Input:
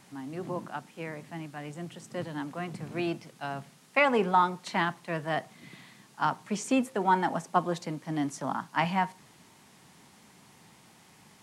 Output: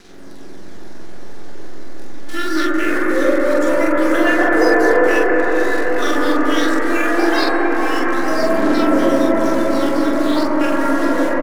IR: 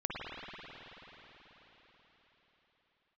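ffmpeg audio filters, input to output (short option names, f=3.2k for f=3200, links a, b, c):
-filter_complex "[0:a]areverse,lowshelf=f=200:g=10.5,bandreject=f=225.1:t=h:w=4,bandreject=f=450.2:t=h:w=4,bandreject=f=675.3:t=h:w=4,bandreject=f=900.4:t=h:w=4,bandreject=f=1.1255k:t=h:w=4,bandreject=f=1.3506k:t=h:w=4,bandreject=f=1.5757k:t=h:w=4,bandreject=f=1.8008k:t=h:w=4,bandreject=f=2.0259k:t=h:w=4,bandreject=f=2.251k:t=h:w=4,bandreject=f=2.4761k:t=h:w=4,bandreject=f=2.7012k:t=h:w=4,bandreject=f=2.9263k:t=h:w=4,bandreject=f=3.1514k:t=h:w=4,bandreject=f=3.3765k:t=h:w=4,bandreject=f=3.6016k:t=h:w=4,bandreject=f=3.8267k:t=h:w=4,bandreject=f=4.0518k:t=h:w=4,bandreject=f=4.2769k:t=h:w=4,bandreject=f=4.502k:t=h:w=4,bandreject=f=4.7271k:t=h:w=4,acompressor=threshold=-32dB:ratio=6,asetrate=83250,aresample=44100,atempo=0.529732,lowpass=f=5.8k:t=q:w=1.9,acrusher=bits=8:dc=4:mix=0:aa=0.000001,aphaser=in_gain=1:out_gain=1:delay=3.7:decay=0.45:speed=0.23:type=sinusoidal,asplit=2[a][b];[b]adelay=44,volume=-2.5dB[c];[a][c]amix=inputs=2:normalize=0[d];[1:a]atrim=start_sample=2205,asetrate=23814,aresample=44100[e];[d][e]afir=irnorm=-1:irlink=0,volume=6.5dB"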